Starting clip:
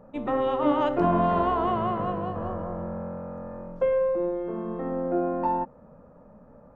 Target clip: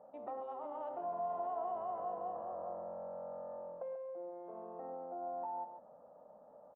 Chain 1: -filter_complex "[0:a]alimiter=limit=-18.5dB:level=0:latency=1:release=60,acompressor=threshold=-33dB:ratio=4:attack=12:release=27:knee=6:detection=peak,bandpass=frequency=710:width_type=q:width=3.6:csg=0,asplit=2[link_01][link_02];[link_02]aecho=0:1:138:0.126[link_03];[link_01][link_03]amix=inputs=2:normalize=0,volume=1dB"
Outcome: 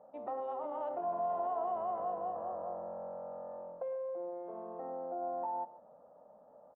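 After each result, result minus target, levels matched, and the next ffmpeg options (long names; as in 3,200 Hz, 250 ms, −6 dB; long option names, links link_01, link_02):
echo-to-direct −8.5 dB; downward compressor: peak gain reduction −4.5 dB
-filter_complex "[0:a]alimiter=limit=-18.5dB:level=0:latency=1:release=60,acompressor=threshold=-33dB:ratio=4:attack=12:release=27:knee=6:detection=peak,bandpass=frequency=710:width_type=q:width=3.6:csg=0,asplit=2[link_01][link_02];[link_02]aecho=0:1:138:0.335[link_03];[link_01][link_03]amix=inputs=2:normalize=0,volume=1dB"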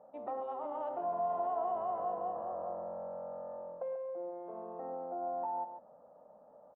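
downward compressor: peak gain reduction −4.5 dB
-filter_complex "[0:a]alimiter=limit=-18.5dB:level=0:latency=1:release=60,acompressor=threshold=-39dB:ratio=4:attack=12:release=27:knee=6:detection=peak,bandpass=frequency=710:width_type=q:width=3.6:csg=0,asplit=2[link_01][link_02];[link_02]aecho=0:1:138:0.335[link_03];[link_01][link_03]amix=inputs=2:normalize=0,volume=1dB"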